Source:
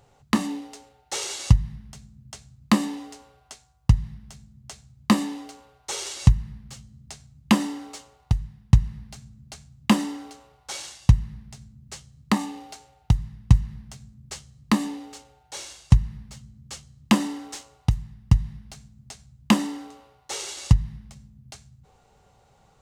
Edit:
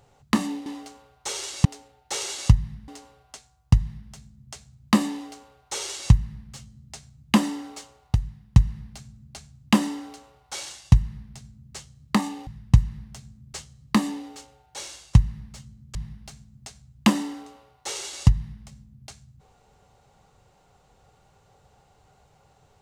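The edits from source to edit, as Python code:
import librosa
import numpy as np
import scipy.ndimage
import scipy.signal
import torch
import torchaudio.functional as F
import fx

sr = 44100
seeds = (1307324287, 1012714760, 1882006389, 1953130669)

y = fx.edit(x, sr, fx.cut(start_s=1.89, length_s=1.16),
    fx.duplicate(start_s=5.29, length_s=0.99, to_s=0.66),
    fx.cut(start_s=12.64, length_s=0.6),
    fx.cut(start_s=16.72, length_s=1.67), tone=tone)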